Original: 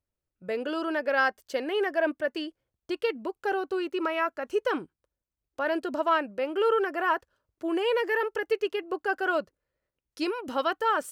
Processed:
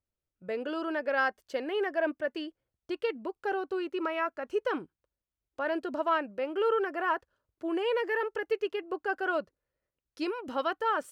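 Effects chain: high shelf 5500 Hz -8.5 dB; gain -3 dB

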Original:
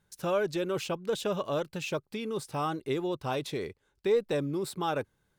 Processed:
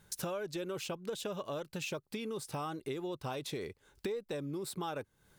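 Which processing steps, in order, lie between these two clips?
high shelf 5400 Hz +5 dB; compressor 6:1, threshold -46 dBFS, peak gain reduction 22.5 dB; gain +8.5 dB

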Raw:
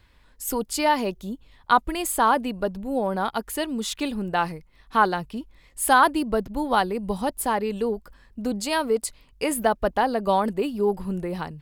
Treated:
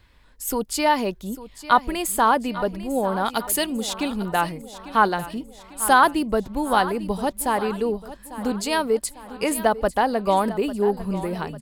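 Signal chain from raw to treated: 3.26–3.7 high shelf 3000 Hz +10 dB; feedback echo 0.848 s, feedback 50%, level -15 dB; gain +1.5 dB

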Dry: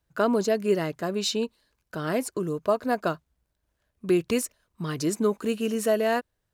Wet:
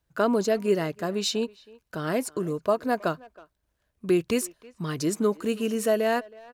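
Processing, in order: speakerphone echo 0.32 s, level -21 dB

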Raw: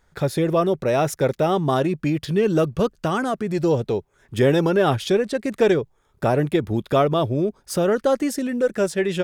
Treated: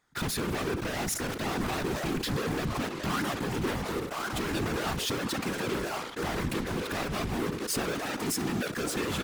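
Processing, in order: on a send: band-limited delay 1.063 s, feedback 30%, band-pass 840 Hz, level -10.5 dB; on the sum: compressor 1.5:1, threshold -28 dBFS, peak gain reduction 6 dB; in parallel at -8 dB: fuzz box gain 49 dB, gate -41 dBFS; on the sum: feedback echo 66 ms, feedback 34%, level -20 dB; soft clip -21 dBFS, distortion -13 dB; HPF 120 Hz; bell 550 Hz -12 dB 0.62 oct; whisperiser; sustainer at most 60 dB/s; gain -5.5 dB

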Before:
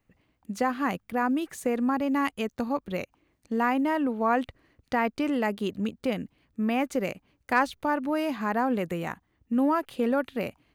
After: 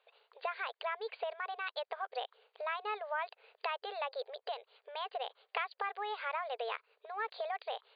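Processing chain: compressor 10:1, threshold -37 dBFS, peak gain reduction 19.5 dB; speed mistake 33 rpm record played at 45 rpm; brick-wall FIR band-pass 420–4800 Hz; gain +5 dB

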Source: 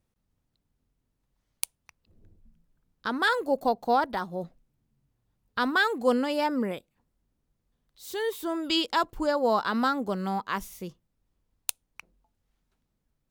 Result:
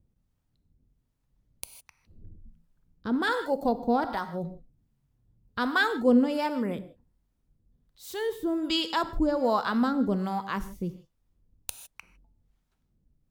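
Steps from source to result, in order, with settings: low shelf 330 Hz +12 dB; non-linear reverb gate 0.18 s flat, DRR 11 dB; harmonic tremolo 1.3 Hz, depth 70%, crossover 590 Hz; gain -1 dB

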